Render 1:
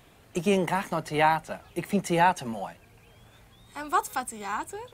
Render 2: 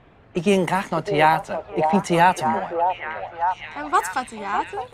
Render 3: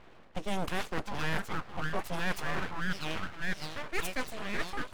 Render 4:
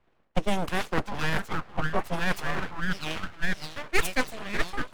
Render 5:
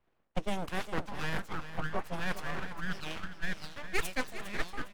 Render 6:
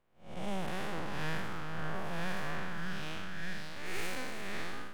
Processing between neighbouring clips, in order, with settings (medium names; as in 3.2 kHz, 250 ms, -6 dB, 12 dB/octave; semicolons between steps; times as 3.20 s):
level-controlled noise filter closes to 1.9 kHz, open at -20.5 dBFS; repeats whose band climbs or falls 607 ms, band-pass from 610 Hz, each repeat 0.7 oct, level -2 dB; trim +5.5 dB
reverse; compression 6:1, threshold -26 dBFS, peak gain reduction 14.5 dB; reverse; full-wave rectifier; trim -1.5 dB
transient shaper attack +7 dB, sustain -1 dB; three bands expanded up and down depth 70%; trim +3.5 dB
feedback delay 406 ms, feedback 28%, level -12 dB; trim -7.5 dB
spectral blur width 207 ms; trim +2 dB